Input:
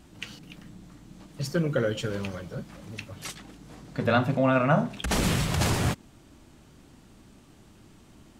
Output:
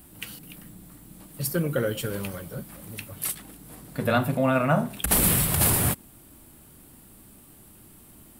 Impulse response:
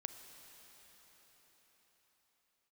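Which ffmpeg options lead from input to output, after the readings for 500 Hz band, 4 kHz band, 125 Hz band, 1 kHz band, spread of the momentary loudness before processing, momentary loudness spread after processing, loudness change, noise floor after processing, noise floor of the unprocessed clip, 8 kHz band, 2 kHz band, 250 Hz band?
0.0 dB, 0.0 dB, 0.0 dB, 0.0 dB, 18 LU, 19 LU, +3.0 dB, -52 dBFS, -55 dBFS, +10.5 dB, 0.0 dB, 0.0 dB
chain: -af "aexciter=amount=4.8:drive=9.9:freq=9000"

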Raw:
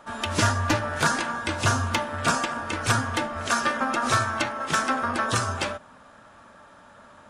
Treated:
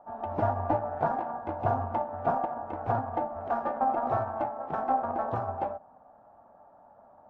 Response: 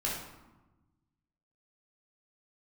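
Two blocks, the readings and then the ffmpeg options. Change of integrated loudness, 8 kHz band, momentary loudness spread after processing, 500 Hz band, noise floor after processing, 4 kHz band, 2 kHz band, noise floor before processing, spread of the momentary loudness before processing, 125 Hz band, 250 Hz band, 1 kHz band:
-6.0 dB, under -40 dB, 6 LU, +0.5 dB, -57 dBFS, under -30 dB, -19.5 dB, -51 dBFS, 5 LU, -8.0 dB, -7.0 dB, -2.5 dB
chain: -filter_complex "[0:a]asplit=2[s0][s1];[s1]aeval=exprs='(mod(6.31*val(0)+1,2)-1)/6.31':c=same,volume=0.355[s2];[s0][s2]amix=inputs=2:normalize=0,aeval=exprs='0.251*(cos(1*acos(clip(val(0)/0.251,-1,1)))-cos(1*PI/2))+0.0501*(cos(3*acos(clip(val(0)/0.251,-1,1)))-cos(3*PI/2))':c=same,lowpass=f=760:t=q:w=7.3,volume=0.501"

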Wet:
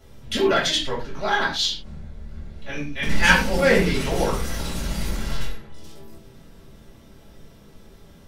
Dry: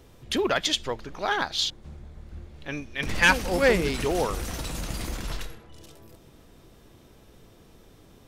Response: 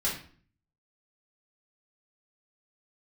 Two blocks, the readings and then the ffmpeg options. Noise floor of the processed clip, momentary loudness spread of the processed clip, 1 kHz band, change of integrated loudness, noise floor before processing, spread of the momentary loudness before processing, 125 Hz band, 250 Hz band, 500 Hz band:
-49 dBFS, 23 LU, +3.5 dB, +3.5 dB, -54 dBFS, 21 LU, +5.5 dB, +4.5 dB, +3.5 dB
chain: -filter_complex "[1:a]atrim=start_sample=2205,atrim=end_sample=6174[s0];[0:a][s0]afir=irnorm=-1:irlink=0,volume=0.668"

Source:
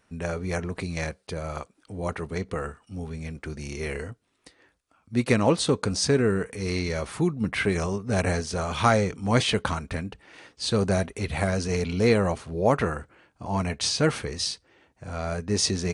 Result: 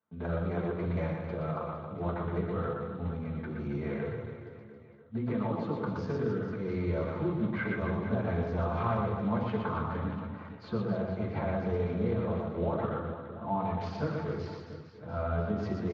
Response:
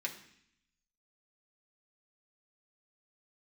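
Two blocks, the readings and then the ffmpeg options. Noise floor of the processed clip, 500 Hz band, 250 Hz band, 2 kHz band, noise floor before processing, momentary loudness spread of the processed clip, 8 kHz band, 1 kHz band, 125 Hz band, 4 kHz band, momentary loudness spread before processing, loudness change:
-49 dBFS, -6.5 dB, -5.0 dB, -10.5 dB, -69 dBFS, 9 LU, under -35 dB, -5.5 dB, -4.5 dB, -23.0 dB, 14 LU, -7.0 dB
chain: -filter_complex "[0:a]highpass=53,agate=range=0.158:threshold=0.00224:ratio=16:detection=peak,lowpass=1100,acompressor=threshold=0.0447:ratio=12,aecho=1:1:120|270|457.5|691.9|984.8:0.631|0.398|0.251|0.158|0.1[s0];[1:a]atrim=start_sample=2205,atrim=end_sample=3969,asetrate=25578,aresample=44100[s1];[s0][s1]afir=irnorm=-1:irlink=0,volume=0.596" -ar 16000 -c:a libspeex -b:a 34k

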